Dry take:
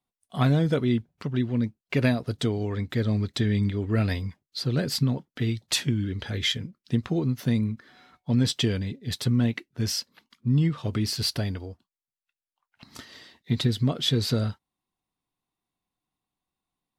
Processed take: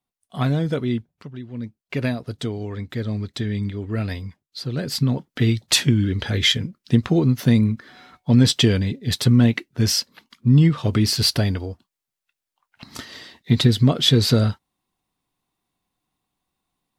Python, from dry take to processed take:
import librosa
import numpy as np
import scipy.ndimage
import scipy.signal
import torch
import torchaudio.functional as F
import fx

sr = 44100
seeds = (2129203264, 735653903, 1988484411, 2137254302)

y = fx.gain(x, sr, db=fx.line((0.97, 0.5), (1.41, -10.0), (1.79, -1.0), (4.75, -1.0), (5.31, 8.0)))